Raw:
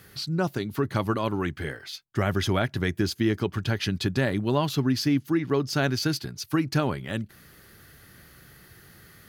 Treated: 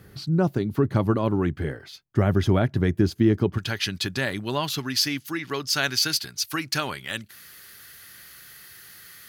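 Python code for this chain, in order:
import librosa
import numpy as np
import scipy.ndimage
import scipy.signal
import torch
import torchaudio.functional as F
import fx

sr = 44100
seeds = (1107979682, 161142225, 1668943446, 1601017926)

y = fx.tilt_shelf(x, sr, db=fx.steps((0.0, 6.0), (3.57, -5.5), (4.78, -9.5)), hz=970.0)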